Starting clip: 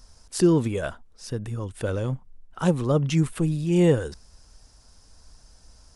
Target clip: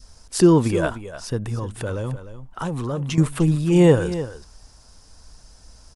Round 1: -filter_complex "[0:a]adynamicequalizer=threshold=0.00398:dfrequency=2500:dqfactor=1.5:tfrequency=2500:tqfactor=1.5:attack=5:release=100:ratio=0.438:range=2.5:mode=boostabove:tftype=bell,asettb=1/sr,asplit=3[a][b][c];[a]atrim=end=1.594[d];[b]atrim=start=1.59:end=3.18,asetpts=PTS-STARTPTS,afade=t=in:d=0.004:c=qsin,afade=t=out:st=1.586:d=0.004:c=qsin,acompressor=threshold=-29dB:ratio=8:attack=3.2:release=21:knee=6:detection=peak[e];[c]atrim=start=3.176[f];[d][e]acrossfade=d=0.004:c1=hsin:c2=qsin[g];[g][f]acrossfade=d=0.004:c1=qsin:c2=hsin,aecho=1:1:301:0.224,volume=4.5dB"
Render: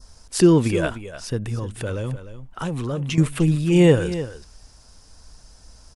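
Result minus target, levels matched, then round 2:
1000 Hz band -3.0 dB
-filter_complex "[0:a]adynamicequalizer=threshold=0.00398:dfrequency=960:dqfactor=1.5:tfrequency=960:tqfactor=1.5:attack=5:release=100:ratio=0.438:range=2.5:mode=boostabove:tftype=bell,asettb=1/sr,asplit=3[a][b][c];[a]atrim=end=1.594[d];[b]atrim=start=1.59:end=3.18,asetpts=PTS-STARTPTS,afade=t=in:d=0.004:c=qsin,afade=t=out:st=1.586:d=0.004:c=qsin,acompressor=threshold=-29dB:ratio=8:attack=3.2:release=21:knee=6:detection=peak[e];[c]atrim=start=3.176[f];[d][e]acrossfade=d=0.004:c1=hsin:c2=qsin[g];[g][f]acrossfade=d=0.004:c1=qsin:c2=hsin,aecho=1:1:301:0.224,volume=4.5dB"

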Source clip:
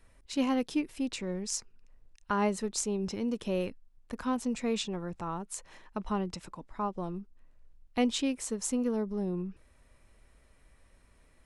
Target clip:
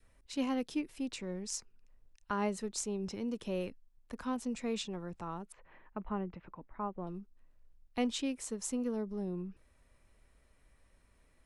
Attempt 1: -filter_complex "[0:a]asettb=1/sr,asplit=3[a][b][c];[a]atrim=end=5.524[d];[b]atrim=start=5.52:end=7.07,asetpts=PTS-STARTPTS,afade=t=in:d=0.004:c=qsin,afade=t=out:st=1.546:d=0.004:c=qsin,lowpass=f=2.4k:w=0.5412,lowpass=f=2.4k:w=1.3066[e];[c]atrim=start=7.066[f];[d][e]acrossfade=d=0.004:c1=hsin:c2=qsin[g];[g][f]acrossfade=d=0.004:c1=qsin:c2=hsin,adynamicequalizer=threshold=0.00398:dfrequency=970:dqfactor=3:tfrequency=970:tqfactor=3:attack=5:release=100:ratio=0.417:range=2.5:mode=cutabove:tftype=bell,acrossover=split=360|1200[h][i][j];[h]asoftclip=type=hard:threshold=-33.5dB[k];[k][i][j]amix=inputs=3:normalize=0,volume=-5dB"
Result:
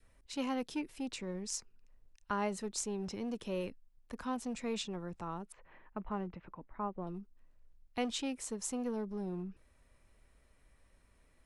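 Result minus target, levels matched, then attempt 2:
hard clip: distortion +25 dB
-filter_complex "[0:a]asettb=1/sr,asplit=3[a][b][c];[a]atrim=end=5.524[d];[b]atrim=start=5.52:end=7.07,asetpts=PTS-STARTPTS,afade=t=in:d=0.004:c=qsin,afade=t=out:st=1.546:d=0.004:c=qsin,lowpass=f=2.4k:w=0.5412,lowpass=f=2.4k:w=1.3066[e];[c]atrim=start=7.066[f];[d][e]acrossfade=d=0.004:c1=hsin:c2=qsin[g];[g][f]acrossfade=d=0.004:c1=qsin:c2=hsin,adynamicequalizer=threshold=0.00398:dfrequency=970:dqfactor=3:tfrequency=970:tqfactor=3:attack=5:release=100:ratio=0.417:range=2.5:mode=cutabove:tftype=bell,acrossover=split=360|1200[h][i][j];[h]asoftclip=type=hard:threshold=-25dB[k];[k][i][j]amix=inputs=3:normalize=0,volume=-5dB"

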